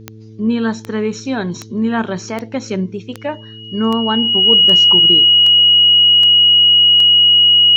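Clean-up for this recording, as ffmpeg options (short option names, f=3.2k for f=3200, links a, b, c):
-af "adeclick=t=4,bandreject=f=109.6:t=h:w=4,bandreject=f=219.2:t=h:w=4,bandreject=f=328.8:t=h:w=4,bandreject=f=438.4:t=h:w=4,bandreject=f=2.9k:w=30"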